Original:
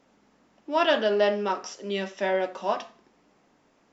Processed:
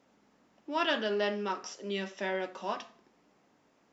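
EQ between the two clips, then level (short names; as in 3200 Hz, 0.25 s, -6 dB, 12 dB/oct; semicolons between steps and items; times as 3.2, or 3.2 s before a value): dynamic EQ 630 Hz, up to -7 dB, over -37 dBFS, Q 1.5; HPF 55 Hz; -4.0 dB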